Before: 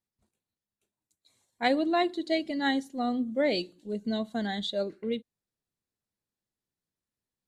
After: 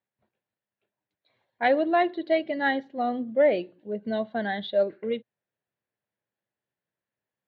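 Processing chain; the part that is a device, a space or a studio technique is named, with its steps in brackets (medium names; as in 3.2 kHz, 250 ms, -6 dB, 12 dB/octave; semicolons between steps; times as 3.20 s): 3.42–4.03 s: peaking EQ 4.2 kHz -9 dB 1.3 oct; overdrive pedal into a guitar cabinet (overdrive pedal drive 10 dB, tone 1.6 kHz, clips at -13 dBFS; cabinet simulation 91–3500 Hz, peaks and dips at 120 Hz +6 dB, 270 Hz -3 dB, 590 Hz +5 dB, 1.2 kHz -4 dB, 1.7 kHz +4 dB); trim +2 dB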